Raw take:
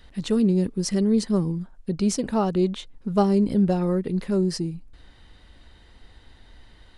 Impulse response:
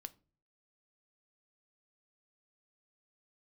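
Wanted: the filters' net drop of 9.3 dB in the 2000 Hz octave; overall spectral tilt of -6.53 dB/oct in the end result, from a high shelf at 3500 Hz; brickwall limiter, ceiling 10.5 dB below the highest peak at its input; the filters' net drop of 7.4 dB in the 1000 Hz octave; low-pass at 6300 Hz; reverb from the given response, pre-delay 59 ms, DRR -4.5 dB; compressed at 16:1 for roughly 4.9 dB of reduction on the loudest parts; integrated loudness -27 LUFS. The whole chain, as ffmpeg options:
-filter_complex "[0:a]lowpass=6.3k,equalizer=f=1k:t=o:g=-8.5,equalizer=f=2k:t=o:g=-8,highshelf=f=3.5k:g=-4,acompressor=threshold=-21dB:ratio=16,alimiter=level_in=1.5dB:limit=-24dB:level=0:latency=1,volume=-1.5dB,asplit=2[a][b];[1:a]atrim=start_sample=2205,adelay=59[c];[b][c]afir=irnorm=-1:irlink=0,volume=10dB[d];[a][d]amix=inputs=2:normalize=0,volume=1dB"

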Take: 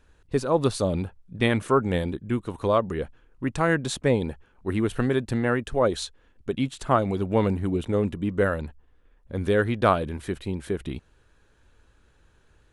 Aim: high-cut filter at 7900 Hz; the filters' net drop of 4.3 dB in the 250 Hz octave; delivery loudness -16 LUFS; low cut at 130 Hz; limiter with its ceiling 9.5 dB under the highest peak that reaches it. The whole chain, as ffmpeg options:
-af "highpass=130,lowpass=7.9k,equalizer=f=250:t=o:g=-5,volume=14dB,alimiter=limit=-1dB:level=0:latency=1"

